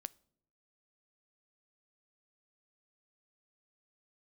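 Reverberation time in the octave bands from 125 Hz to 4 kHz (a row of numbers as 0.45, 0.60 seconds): 1.0, 0.90, 0.80, 0.60, 0.45, 0.45 seconds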